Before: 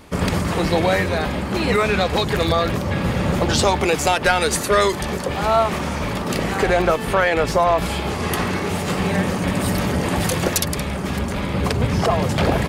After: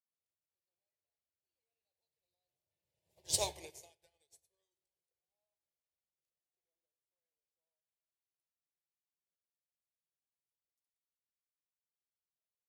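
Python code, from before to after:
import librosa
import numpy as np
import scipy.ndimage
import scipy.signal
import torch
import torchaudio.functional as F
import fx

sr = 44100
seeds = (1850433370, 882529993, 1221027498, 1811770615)

y = fx.doppler_pass(x, sr, speed_mps=24, closest_m=1.9, pass_at_s=3.47)
y = scipy.signal.sosfilt(scipy.signal.butter(2, 57.0, 'highpass', fs=sr, output='sos'), y)
y = scipy.signal.lfilter([1.0, -0.8], [1.0], y)
y = fx.fixed_phaser(y, sr, hz=550.0, stages=4)
y = fx.room_shoebox(y, sr, seeds[0], volume_m3=1000.0, walls='mixed', distance_m=0.71)
y = fx.upward_expand(y, sr, threshold_db=-53.0, expansion=2.5)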